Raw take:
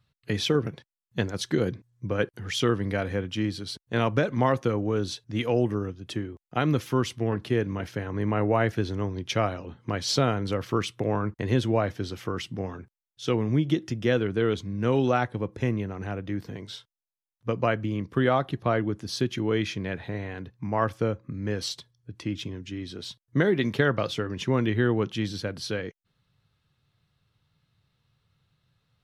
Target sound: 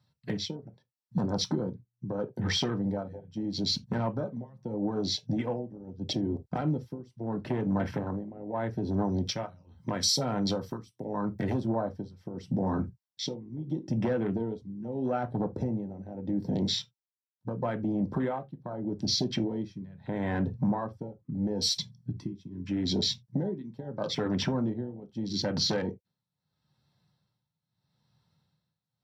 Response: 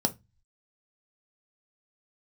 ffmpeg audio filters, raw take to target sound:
-filter_complex "[0:a]asettb=1/sr,asplit=3[link_01][link_02][link_03];[link_01]atrim=end=9.054[link_04];[link_02]atrim=start=9.05:end=11.6,asetpts=PTS-STARTPTS,afade=type=in:duration=0.004:curve=qsin,afade=type=out:start_time=2.546:duration=0.004:curve=qsin,aemphasis=mode=production:type=75kf[link_05];[link_03]atrim=start=11.596[link_06];[link_04][link_05]acrossfade=duration=0.004:curve1=hsin:curve2=qsin[link_07];[link_07][link_06]acrossfade=duration=0.004:curve1=qsin:curve2=hsin,acompressor=threshold=-36dB:ratio=16,tremolo=f=0.78:d=0.88,aeval=exprs='0.0631*(cos(1*acos(clip(val(0)/0.0631,-1,1)))-cos(1*PI/2))+0.00794*(cos(2*acos(clip(val(0)/0.0631,-1,1)))-cos(2*PI/2))+0.00126*(cos(3*acos(clip(val(0)/0.0631,-1,1)))-cos(3*PI/2))+0.00126*(cos(4*acos(clip(val(0)/0.0631,-1,1)))-cos(4*PI/2))+0.0251*(cos(5*acos(clip(val(0)/0.0631,-1,1)))-cos(5*PI/2))':channel_layout=same,alimiter=level_in=5.5dB:limit=-24dB:level=0:latency=1:release=23,volume=-5.5dB,equalizer=frequency=200:width_type=o:width=2.5:gain=-7.5,afwtdn=0.00562[link_08];[1:a]atrim=start_sample=2205,atrim=end_sample=3969[link_09];[link_08][link_09]afir=irnorm=-1:irlink=0"

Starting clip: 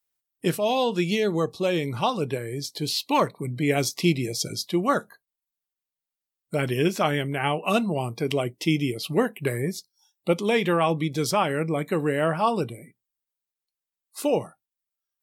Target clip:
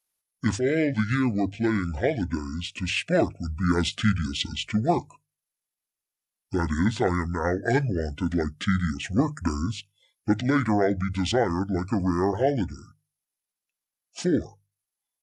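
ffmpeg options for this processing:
ffmpeg -i in.wav -af "asetrate=26990,aresample=44100,atempo=1.63392,bandreject=frequency=50:width_type=h:width=6,bandreject=frequency=100:width_type=h:width=6,bandreject=frequency=150:width_type=h:width=6" out.wav

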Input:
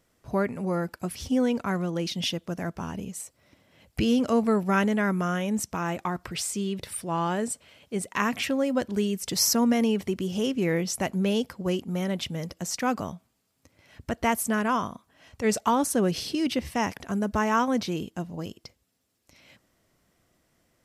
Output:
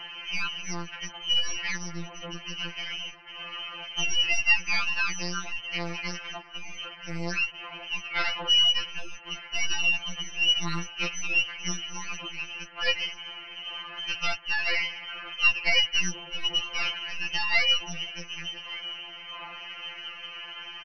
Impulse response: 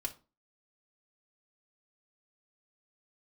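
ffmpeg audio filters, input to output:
-filter_complex "[0:a]aeval=exprs='val(0)+0.5*0.0335*sgn(val(0))':channel_layout=same,acontrast=24,lowpass=frequency=2700:width_type=q:width=0.5098,lowpass=frequency=2700:width_type=q:width=0.6013,lowpass=frequency=2700:width_type=q:width=0.9,lowpass=frequency=2700:width_type=q:width=2.563,afreqshift=-3200,aecho=1:1:1176|2352|3528|4704:0.126|0.0567|0.0255|0.0115,asplit=2[link_01][link_02];[1:a]atrim=start_sample=2205[link_03];[link_02][link_03]afir=irnorm=-1:irlink=0,volume=-19.5dB[link_04];[link_01][link_04]amix=inputs=2:normalize=0,aeval=exprs='0.75*(cos(1*acos(clip(val(0)/0.75,-1,1)))-cos(1*PI/2))+0.376*(cos(2*acos(clip(val(0)/0.75,-1,1)))-cos(2*PI/2))+0.0133*(cos(3*acos(clip(val(0)/0.75,-1,1)))-cos(3*PI/2))':channel_layout=same,afftfilt=real='re*2.83*eq(mod(b,8),0)':imag='im*2.83*eq(mod(b,8),0)':win_size=2048:overlap=0.75,volume=-6dB"

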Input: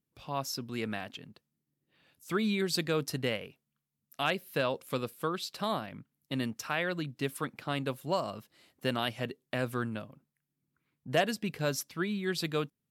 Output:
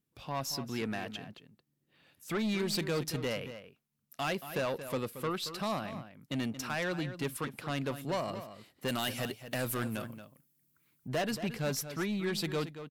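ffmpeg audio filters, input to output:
ffmpeg -i in.wav -filter_complex "[0:a]asettb=1/sr,asplit=3[link_01][link_02][link_03];[link_01]atrim=end=8.884[link_04];[link_02]atrim=start=8.88:end=11.08,asetpts=PTS-STARTPTS,afade=type=in:duration=0.004:curve=qsin,afade=type=out:start_time=2.196:duration=0.004:curve=qsin,aemphasis=mode=production:type=75kf[link_05];[link_03]atrim=start=11.076[link_06];[link_04][link_05]acrossfade=duration=0.004:curve1=hsin:curve2=qsin[link_07];[link_07][link_06]acrossfade=duration=0.004:curve1=qsin:curve2=hsin,aeval=exprs='(tanh(31.6*val(0)+0.15)-tanh(0.15))/31.6':channel_layout=same,asplit=2[link_08][link_09];[link_09]adelay=227.4,volume=-11dB,highshelf=frequency=4000:gain=-5.12[link_10];[link_08][link_10]amix=inputs=2:normalize=0,volume=2dB" out.wav

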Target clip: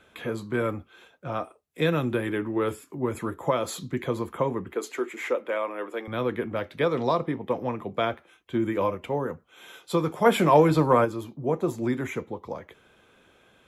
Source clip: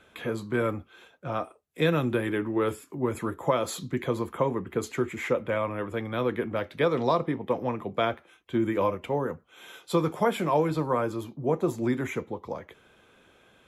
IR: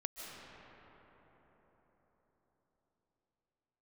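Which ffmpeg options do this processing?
-filter_complex "[0:a]asettb=1/sr,asplit=3[link_01][link_02][link_03];[link_01]atrim=end=4.734[link_04];[link_02]atrim=start=4.73:end=6.08,asetpts=PTS-STARTPTS,afade=type=in:duration=0.004:curve=qsin,afade=type=out:start_time=1.346:duration=0.004:curve=qsin,highpass=frequency=300:width=0.5412,highpass=frequency=300:width=1.3066[link_05];[link_03]atrim=start=6.076[link_06];[link_04][link_05]acrossfade=duration=0.004:curve1=hsin:curve2=qsin[link_07];[link_07][link_06]acrossfade=duration=0.004:curve1=qsin:curve2=hsin,asplit=3[link_08][link_09][link_10];[link_08]afade=type=out:start_time=10.24:duration=0.02[link_11];[link_09]acontrast=78,afade=type=in:start_time=10.24:duration=0.02,afade=type=out:start_time=11.04:duration=0.02[link_12];[link_10]afade=type=in:start_time=11.04:duration=0.02[link_13];[link_11][link_12][link_13]amix=inputs=3:normalize=0"

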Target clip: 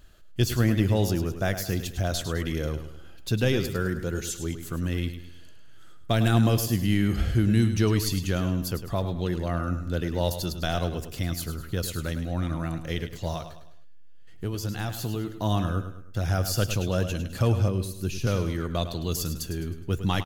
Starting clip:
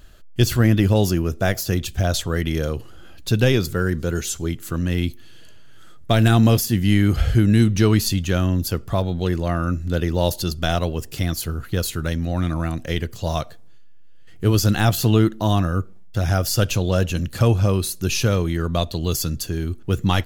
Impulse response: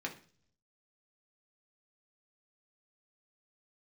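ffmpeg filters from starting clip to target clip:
-filter_complex "[0:a]asettb=1/sr,asplit=3[link_01][link_02][link_03];[link_01]atrim=end=13.334[link_04];[link_02]atrim=start=13.33:end=15.29,asetpts=PTS-STARTPTS,afade=type=in:duration=0.004:curve=qsin,afade=type=out:start_time=1.956:duration=0.004:curve=qsin,acompressor=threshold=-24dB:ratio=2.5[link_05];[link_03]atrim=start=15.286[link_06];[link_04][link_05]acrossfade=duration=0.004:curve1=hsin:curve2=qsin[link_07];[link_07][link_06]acrossfade=duration=0.004:curve1=qsin:curve2=hsin,aecho=1:1:104|208|312|416:0.316|0.13|0.0532|0.0218,asettb=1/sr,asplit=3[link_08][link_09][link_10];[link_08]atrim=end=17.684[link_11];[link_09]atrim=start=17.68:end=18.27,asetpts=PTS-STARTPTS,afade=type=in:duration=0.004:curve=qsin,afade=type=out:start_time=0.586:duration=0.004:curve=qsin,acrossover=split=450[link_12][link_13];[link_13]acompressor=threshold=-35dB:ratio=2.5[link_14];[link_12][link_14]amix=inputs=2:normalize=0[link_15];[link_10]atrim=start=18.266[link_16];[link_11][link_15]acrossfade=duration=0.004:curve1=hsin:curve2=qsin[link_17];[link_17][link_16]acrossfade=duration=0.004:curve1=qsin:curve2=hsin,volume=-6.5dB"

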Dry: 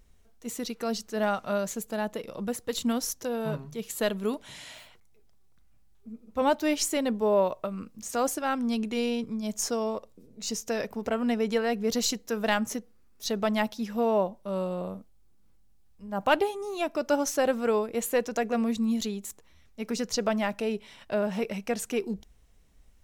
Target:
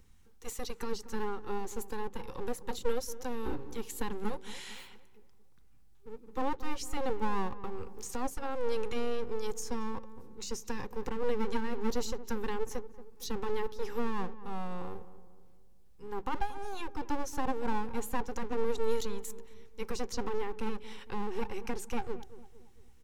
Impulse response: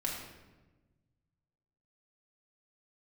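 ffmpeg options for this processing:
-filter_complex "[0:a]equalizer=frequency=440:width=0.58:gain=3,acrossover=split=450[link_01][link_02];[link_01]aeval=exprs='abs(val(0))':channel_layout=same[link_03];[link_02]acompressor=threshold=-41dB:ratio=6[link_04];[link_03][link_04]amix=inputs=2:normalize=0,asuperstop=centerf=640:order=8:qfactor=3.5,asplit=2[link_05][link_06];[link_06]adelay=228,lowpass=frequency=1200:poles=1,volume=-14dB,asplit=2[link_07][link_08];[link_08]adelay=228,lowpass=frequency=1200:poles=1,volume=0.48,asplit=2[link_09][link_10];[link_10]adelay=228,lowpass=frequency=1200:poles=1,volume=0.48,asplit=2[link_11][link_12];[link_12]adelay=228,lowpass=frequency=1200:poles=1,volume=0.48,asplit=2[link_13][link_14];[link_14]adelay=228,lowpass=frequency=1200:poles=1,volume=0.48[link_15];[link_05][link_07][link_09][link_11][link_13][link_15]amix=inputs=6:normalize=0"

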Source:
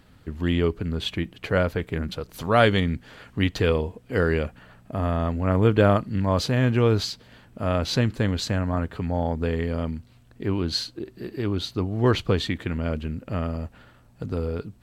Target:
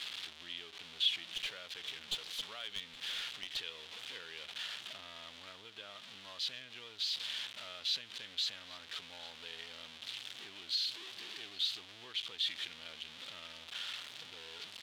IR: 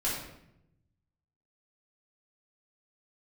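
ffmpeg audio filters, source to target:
-filter_complex "[0:a]aeval=exprs='val(0)+0.5*0.0891*sgn(val(0))':channel_layout=same,acompressor=threshold=-20dB:ratio=16,bandpass=frequency=3400:width_type=q:width=3.4:csg=0,asettb=1/sr,asplit=3[link_01][link_02][link_03];[link_01]atrim=end=1.344[link_04];[link_02]atrim=start=1.34:end=3.57,asetpts=PTS-STARTPTS,afade=type=in:duration=0.004:curve=qsin,afade=type=out:start_time=2.226:duration=0.004:curve=qsin,aeval=exprs='clip(val(0),-1,0.0282)':channel_layout=same[link_05];[link_03]atrim=start=3.566[link_06];[link_04][link_05]acrossfade=duration=0.004:curve1=hsin:curve2=qsin[link_07];[link_07][link_06]acrossfade=duration=0.004:curve1=qsin:curve2=hsin,aecho=1:1:818:0.0891,volume=-4dB"

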